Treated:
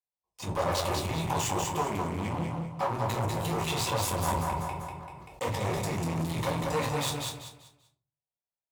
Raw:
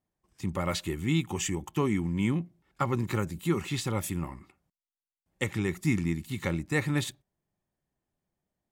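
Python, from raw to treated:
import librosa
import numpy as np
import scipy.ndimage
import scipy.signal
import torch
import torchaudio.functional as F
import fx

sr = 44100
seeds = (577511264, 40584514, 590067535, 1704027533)

y = fx.level_steps(x, sr, step_db=20)
y = fx.high_shelf(y, sr, hz=8200.0, db=-6.5)
y = fx.fixed_phaser(y, sr, hz=620.0, stages=4)
y = fx.leveller(y, sr, passes=5)
y = fx.echo_feedback(y, sr, ms=194, feedback_pct=29, wet_db=-4.0)
y = fx.room_shoebox(y, sr, seeds[0], volume_m3=170.0, walls='furnished', distance_m=1.9)
y = fx.clip_asym(y, sr, top_db=-32.0, bottom_db=-20.5)
y = fx.highpass(y, sr, hz=110.0, slope=6)
y = fx.peak_eq(y, sr, hz=1000.0, db=11.0, octaves=0.75)
y = fx.sustainer(y, sr, db_per_s=24.0, at=(4.2, 6.24))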